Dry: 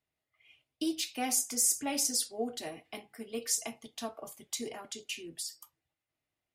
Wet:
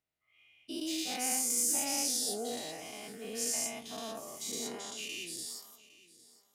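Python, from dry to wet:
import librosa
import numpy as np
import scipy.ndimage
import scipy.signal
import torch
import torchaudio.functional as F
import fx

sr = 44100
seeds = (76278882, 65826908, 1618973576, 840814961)

y = fx.spec_dilate(x, sr, span_ms=240)
y = fx.echo_feedback(y, sr, ms=808, feedback_pct=25, wet_db=-19.0)
y = y * 10.0 ** (-9.0 / 20.0)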